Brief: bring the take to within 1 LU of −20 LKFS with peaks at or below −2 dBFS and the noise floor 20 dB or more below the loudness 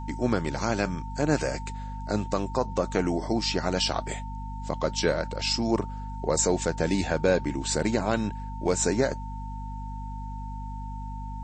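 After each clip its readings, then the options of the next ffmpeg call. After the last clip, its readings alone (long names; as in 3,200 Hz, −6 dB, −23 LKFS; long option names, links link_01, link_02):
mains hum 50 Hz; hum harmonics up to 250 Hz; level of the hum −33 dBFS; interfering tone 900 Hz; level of the tone −40 dBFS; integrated loudness −28.5 LKFS; sample peak −10.5 dBFS; target loudness −20.0 LKFS
→ -af "bandreject=frequency=50:width_type=h:width=6,bandreject=frequency=100:width_type=h:width=6,bandreject=frequency=150:width_type=h:width=6,bandreject=frequency=200:width_type=h:width=6,bandreject=frequency=250:width_type=h:width=6"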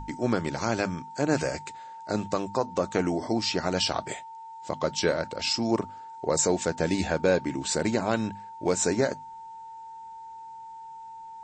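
mains hum none found; interfering tone 900 Hz; level of the tone −40 dBFS
→ -af "bandreject=frequency=900:width=30"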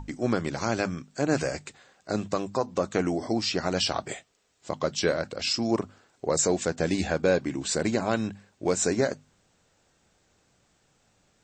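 interfering tone none found; integrated loudness −28.0 LKFS; sample peak −11.0 dBFS; target loudness −20.0 LKFS
→ -af "volume=8dB"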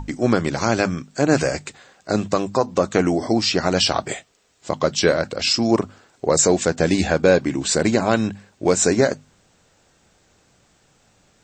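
integrated loudness −20.0 LKFS; sample peak −3.0 dBFS; background noise floor −60 dBFS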